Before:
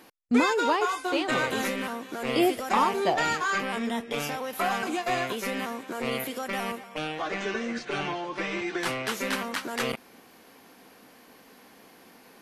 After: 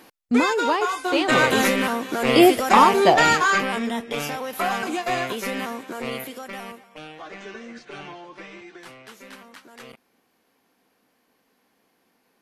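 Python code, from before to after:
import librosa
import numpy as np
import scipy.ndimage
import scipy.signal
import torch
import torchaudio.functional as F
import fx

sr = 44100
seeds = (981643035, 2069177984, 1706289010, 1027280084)

y = fx.gain(x, sr, db=fx.line((0.95, 3.0), (1.44, 9.5), (3.37, 9.5), (3.92, 3.0), (5.77, 3.0), (6.9, -7.5), (8.26, -7.5), (8.87, -14.0)))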